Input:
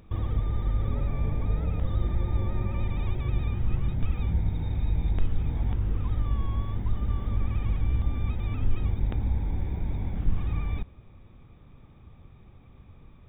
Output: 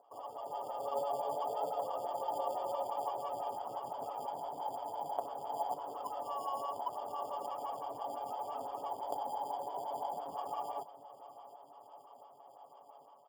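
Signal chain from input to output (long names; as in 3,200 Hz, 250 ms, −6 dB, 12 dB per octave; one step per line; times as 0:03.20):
flat-topped band-pass 770 Hz, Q 2.2
comb filter 7.1 ms
in parallel at −6 dB: decimation without filtering 11×
on the sum: automatic gain control gain up to 8 dB
on a send: repeating echo 712 ms, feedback 55%, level −16.5 dB
on the sum: phaser with staggered stages 5.9 Hz
level +2.5 dB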